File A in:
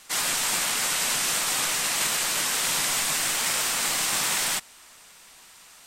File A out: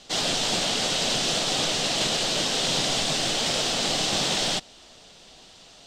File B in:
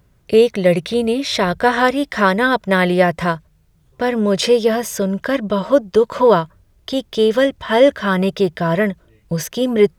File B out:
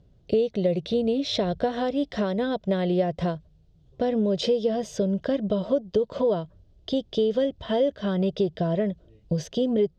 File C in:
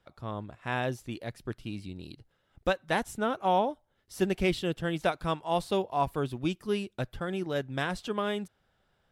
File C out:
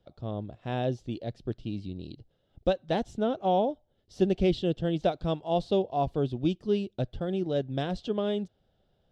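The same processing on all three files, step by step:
high-frequency loss of the air 160 metres
downward compressor 4 to 1, threshold −19 dBFS
flat-topped bell 1,500 Hz −12.5 dB
normalise the peak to −12 dBFS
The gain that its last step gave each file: +10.0, −1.5, +3.5 decibels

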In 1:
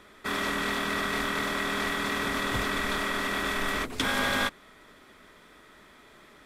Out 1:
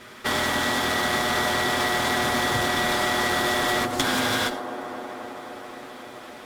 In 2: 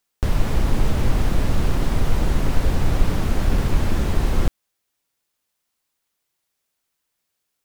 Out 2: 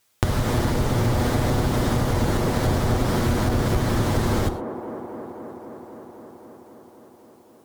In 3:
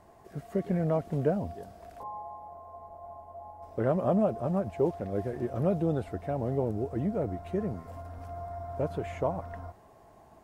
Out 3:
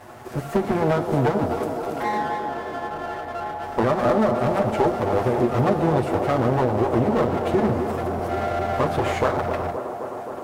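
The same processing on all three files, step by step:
lower of the sound and its delayed copy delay 8.2 ms
high-pass filter 73 Hz 6 dB per octave
dynamic equaliser 2,600 Hz, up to −6 dB, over −52 dBFS, Q 3.6
downward compressor 6 to 1, threshold −32 dBFS
asymmetric clip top −29 dBFS
on a send: delay with a band-pass on its return 262 ms, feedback 80%, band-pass 520 Hz, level −7 dB
on the sum: reverb whose tail is shaped and stops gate 140 ms flat, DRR 11.5 dB
loudness normalisation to −23 LKFS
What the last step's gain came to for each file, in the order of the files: +11.0, +13.0, +16.5 decibels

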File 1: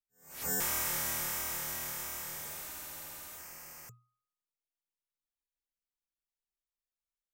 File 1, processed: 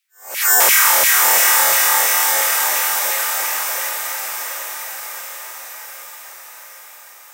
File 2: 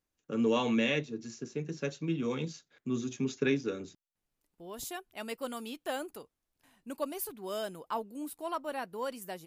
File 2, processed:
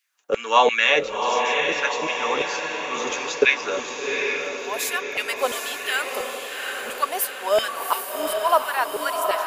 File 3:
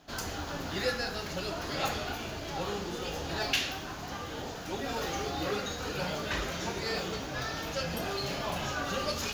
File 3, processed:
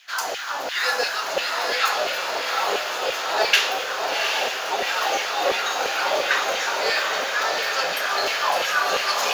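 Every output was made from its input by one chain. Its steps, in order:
auto-filter high-pass saw down 2.9 Hz 490–2,500 Hz
feedback delay with all-pass diffusion 769 ms, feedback 59%, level −4 dB
normalise the peak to −2 dBFS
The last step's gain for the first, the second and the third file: +20.0, +13.0, +9.0 decibels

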